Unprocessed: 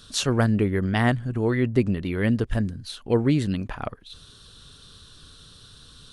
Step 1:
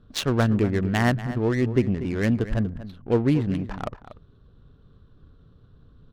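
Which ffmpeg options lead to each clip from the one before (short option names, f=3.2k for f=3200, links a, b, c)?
-filter_complex "[0:a]adynamicsmooth=sensitivity=3.5:basefreq=640,asplit=2[a][b];[b]adelay=239.1,volume=-13dB,highshelf=f=4k:g=-5.38[c];[a][c]amix=inputs=2:normalize=0"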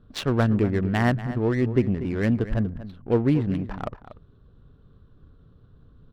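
-af "highshelf=f=3.7k:g=-8,bandreject=f=6.5k:w=17"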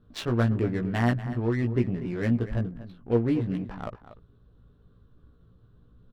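-filter_complex "[0:a]asplit=2[a][b];[b]adelay=17,volume=-3.5dB[c];[a][c]amix=inputs=2:normalize=0,volume=-5.5dB"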